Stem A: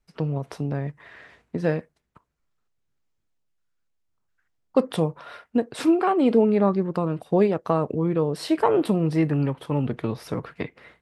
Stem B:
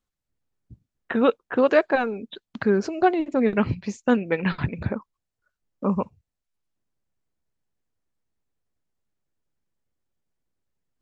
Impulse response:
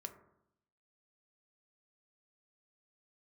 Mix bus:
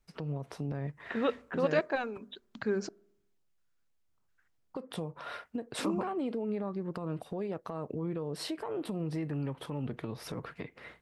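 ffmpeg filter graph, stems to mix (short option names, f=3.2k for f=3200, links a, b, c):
-filter_complex "[0:a]acompressor=threshold=-25dB:ratio=10,alimiter=level_in=3dB:limit=-24dB:level=0:latency=1:release=226,volume=-3dB,volume=0dB[a];[1:a]highshelf=f=4.3k:g=10.5,bandreject=f=50:t=h:w=6,bandreject=f=100:t=h:w=6,bandreject=f=150:t=h:w=6,bandreject=f=200:t=h:w=6,bandreject=f=250:t=h:w=6,volume=-12dB,asplit=3[b][c][d];[b]atrim=end=2.89,asetpts=PTS-STARTPTS,afade=t=out:st=2.886:d=0.004:c=hsin[e];[c]atrim=start=2.89:end=5.2,asetpts=PTS-STARTPTS,volume=0[f];[d]atrim=start=5.2,asetpts=PTS-STARTPTS,afade=t=in:d=0.004:c=hsin[g];[e][f][g]concat=n=3:v=0:a=1,asplit=2[h][i];[i]volume=-12.5dB[j];[2:a]atrim=start_sample=2205[k];[j][k]afir=irnorm=-1:irlink=0[l];[a][h][l]amix=inputs=3:normalize=0"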